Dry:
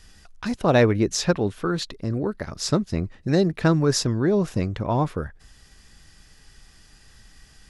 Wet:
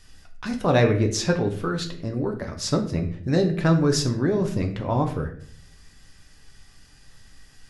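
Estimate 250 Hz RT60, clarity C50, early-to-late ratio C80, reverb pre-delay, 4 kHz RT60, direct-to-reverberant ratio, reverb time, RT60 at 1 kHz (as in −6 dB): 0.80 s, 10.0 dB, 13.5 dB, 7 ms, 0.40 s, 3.0 dB, 0.55 s, 0.45 s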